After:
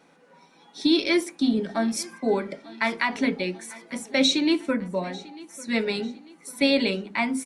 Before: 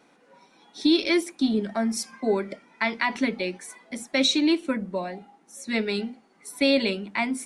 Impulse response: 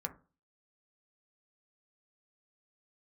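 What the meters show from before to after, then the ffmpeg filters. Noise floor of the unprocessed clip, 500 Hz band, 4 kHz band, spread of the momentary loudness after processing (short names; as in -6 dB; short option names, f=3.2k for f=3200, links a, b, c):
-60 dBFS, +0.5 dB, +0.5 dB, 15 LU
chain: -filter_complex "[0:a]aecho=1:1:895|1790|2685:0.0944|0.0415|0.0183,asplit=2[a][b];[1:a]atrim=start_sample=2205[c];[b][c]afir=irnorm=-1:irlink=0,volume=2dB[d];[a][d]amix=inputs=2:normalize=0,volume=-5.5dB"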